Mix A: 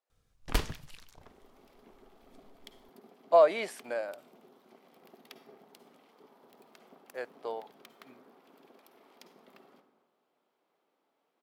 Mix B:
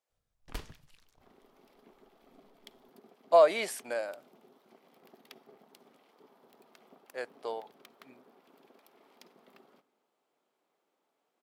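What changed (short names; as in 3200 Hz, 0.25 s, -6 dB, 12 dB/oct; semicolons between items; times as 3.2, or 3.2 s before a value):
speech: add high shelf 4300 Hz +10 dB; first sound -11.5 dB; second sound: send -11.5 dB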